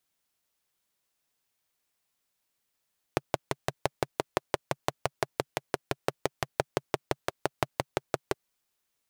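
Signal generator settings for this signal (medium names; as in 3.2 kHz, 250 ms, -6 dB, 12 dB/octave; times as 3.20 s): single-cylinder engine model, steady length 5.17 s, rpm 700, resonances 140/400/580 Hz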